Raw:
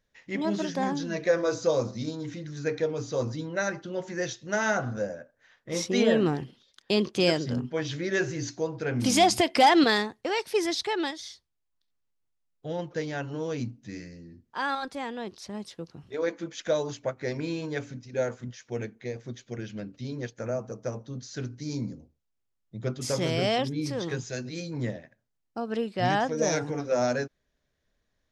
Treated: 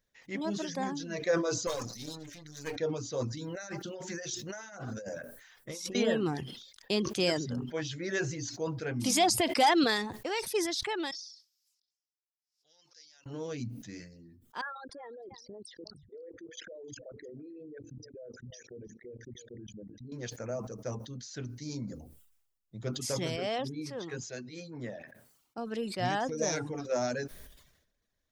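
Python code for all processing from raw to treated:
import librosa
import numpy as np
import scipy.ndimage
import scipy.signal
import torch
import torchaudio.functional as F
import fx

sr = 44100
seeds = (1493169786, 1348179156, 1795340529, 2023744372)

y = fx.chain(x, sr, fx.halfwave_gain(db=-12.0),
    fx.tilt_eq(slope=2.0),
    fx.comb(ms=7.0, depth=0.39), at=(1.67, 2.76))
y = fx.chain(y, sr, fx.high_shelf(hz=5800.0, db=9.5),
    fx.hum_notches(base_hz=60, count=7),
    fx.over_compress(threshold_db=-36.0, ratio=-1.0), at=(3.37, 5.95))
y = fx.chain(y, sr, fx.bandpass_q(hz=5200.0, q=5.8),
    fx.pre_swell(db_per_s=130.0), at=(11.11, 13.26))
y = fx.chain(y, sr, fx.envelope_sharpen(power=3.0),
    fx.level_steps(step_db=20),
    fx.echo_single(ms=308, db=-21.0), at=(14.61, 20.12))
y = fx.chain(y, sr, fx.highpass(hz=220.0, slope=6),
    fx.high_shelf(hz=4200.0, db=-10.0), at=(23.36, 25.58))
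y = fx.dereverb_blind(y, sr, rt60_s=0.52)
y = fx.high_shelf(y, sr, hz=6900.0, db=9.0)
y = fx.sustainer(y, sr, db_per_s=64.0)
y = y * librosa.db_to_amplitude(-5.5)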